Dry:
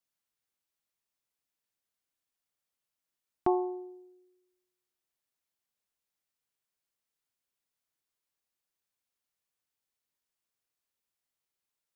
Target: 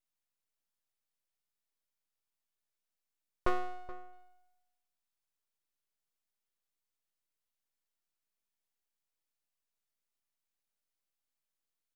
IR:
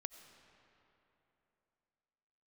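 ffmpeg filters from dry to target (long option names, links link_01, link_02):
-filter_complex "[0:a]asettb=1/sr,asplit=3[link_01][link_02][link_03];[link_01]atrim=end=3.494[link_04];[link_02]atrim=start=3.49:end=4.13,asetpts=PTS-STARTPTS,afade=type=in:duration=0.004:curve=qsin,afade=type=out:start_time=0.636:duration=0.004:curve=qsin,equalizer=frequency=1500:width=1.1:gain=-8[link_05];[link_03]atrim=start=4.126[link_06];[link_04][link_05]acrossfade=duration=0.004:curve1=hsin:curve2=qsin[link_07];[link_07][link_06]acrossfade=duration=0.004:curve1=qsin:curve2=hsin,aeval=exprs='abs(val(0))':channel_layout=same,asplit=2[link_08][link_09];[link_09]adelay=425.7,volume=-17dB,highshelf=frequency=4000:gain=-9.58[link_10];[link_08][link_10]amix=inputs=2:normalize=0,volume=-1dB"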